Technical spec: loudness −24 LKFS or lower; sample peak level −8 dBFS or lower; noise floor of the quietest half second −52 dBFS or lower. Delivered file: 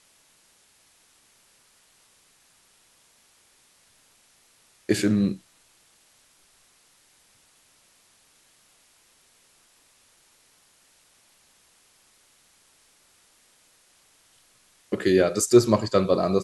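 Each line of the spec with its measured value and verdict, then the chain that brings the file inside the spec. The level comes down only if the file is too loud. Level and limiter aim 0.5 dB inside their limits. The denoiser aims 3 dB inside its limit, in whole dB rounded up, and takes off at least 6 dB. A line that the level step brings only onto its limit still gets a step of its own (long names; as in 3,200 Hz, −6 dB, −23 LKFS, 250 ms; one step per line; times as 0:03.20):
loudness −22.0 LKFS: out of spec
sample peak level −4.0 dBFS: out of spec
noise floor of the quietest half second −61 dBFS: in spec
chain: level −2.5 dB
brickwall limiter −8.5 dBFS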